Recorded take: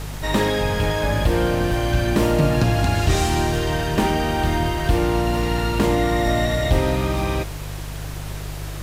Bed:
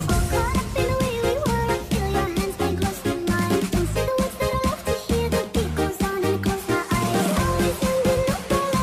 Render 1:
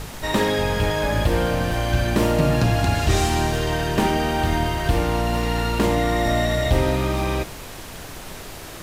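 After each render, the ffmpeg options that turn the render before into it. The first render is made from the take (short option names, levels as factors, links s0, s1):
-af "bandreject=f=50:t=h:w=4,bandreject=f=100:t=h:w=4,bandreject=f=150:t=h:w=4,bandreject=f=200:t=h:w=4,bandreject=f=250:t=h:w=4,bandreject=f=300:t=h:w=4,bandreject=f=350:t=h:w=4"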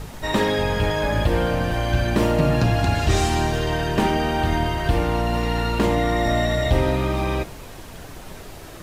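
-af "afftdn=nr=6:nf=-37"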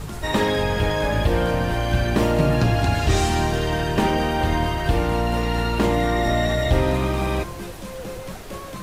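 -filter_complex "[1:a]volume=0.2[s0];[0:a][s0]amix=inputs=2:normalize=0"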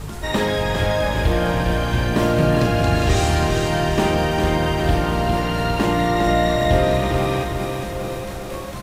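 -filter_complex "[0:a]asplit=2[s0][s1];[s1]adelay=40,volume=0.398[s2];[s0][s2]amix=inputs=2:normalize=0,asplit=2[s3][s4];[s4]aecho=0:1:405|810|1215|1620|2025|2430|2835|3240:0.501|0.301|0.18|0.108|0.065|0.039|0.0234|0.014[s5];[s3][s5]amix=inputs=2:normalize=0"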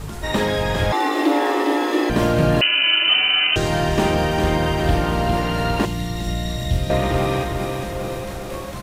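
-filter_complex "[0:a]asettb=1/sr,asplit=3[s0][s1][s2];[s0]atrim=end=0.924[s3];[s1]atrim=start=0.92:end=2.1,asetpts=PTS-STARTPTS,afade=t=in:d=0.004:c=qsin,afade=t=out:st=1.176:d=0.004:c=qsin,afreqshift=240[s4];[s2]atrim=start=2.096[s5];[s3][s4]acrossfade=d=0.004:c1=hsin:c2=qsin[s6];[s6][s5]acrossfade=d=0.004:c1=qsin:c2=hsin,asettb=1/sr,asplit=3[s7][s8][s9];[s7]atrim=end=2.614[s10];[s8]atrim=start=2.61:end=3.56,asetpts=PTS-STARTPTS,afade=t=in:d=0.004:c=qsin,afade=t=out:st=0.946:d=0.004:c=qsin,lowpass=f=2600:t=q:w=0.5098,lowpass=f=2600:t=q:w=0.6013,lowpass=f=2600:t=q:w=0.9,lowpass=f=2600:t=q:w=2.563,afreqshift=-3100[s11];[s9]atrim=start=3.556[s12];[s10][s11]acrossfade=d=0.004:c1=hsin:c2=qsin[s13];[s13][s12]acrossfade=d=0.004:c1=qsin:c2=hsin,asettb=1/sr,asplit=3[s14][s15][s16];[s14]atrim=end=5.854[s17];[s15]atrim=start=5.85:end=6.9,asetpts=PTS-STARTPTS,afade=t=in:d=0.004:c=qsin,afade=t=out:st=1.046:d=0.004:c=qsin,acrossover=split=200|3000[s18][s19][s20];[s19]acompressor=threshold=0.0141:ratio=3:attack=3.2:release=140:knee=2.83:detection=peak[s21];[s18][s21][s20]amix=inputs=3:normalize=0[s22];[s16]atrim=start=6.896[s23];[s17][s22]acrossfade=d=0.004:c1=hsin:c2=qsin[s24];[s24][s23]acrossfade=d=0.004:c1=qsin:c2=hsin"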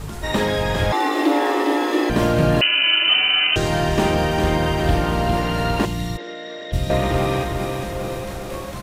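-filter_complex "[0:a]asplit=3[s0][s1][s2];[s0]afade=t=out:st=6.16:d=0.02[s3];[s1]highpass=f=340:w=0.5412,highpass=f=340:w=1.3066,equalizer=f=490:t=q:w=4:g=9,equalizer=f=760:t=q:w=4:g=-9,equalizer=f=1100:t=q:w=4:g=-4,equalizer=f=1600:t=q:w=4:g=4,equalizer=f=2700:t=q:w=4:g=-7,equalizer=f=4300:t=q:w=4:g=-8,lowpass=f=4400:w=0.5412,lowpass=f=4400:w=1.3066,afade=t=in:st=6.16:d=0.02,afade=t=out:st=6.72:d=0.02[s4];[s2]afade=t=in:st=6.72:d=0.02[s5];[s3][s4][s5]amix=inputs=3:normalize=0"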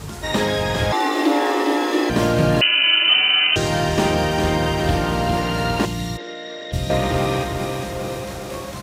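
-af "highpass=63,equalizer=f=5700:w=0.98:g=4"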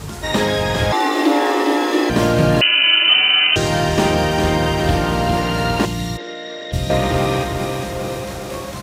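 -af "volume=1.33,alimiter=limit=0.708:level=0:latency=1"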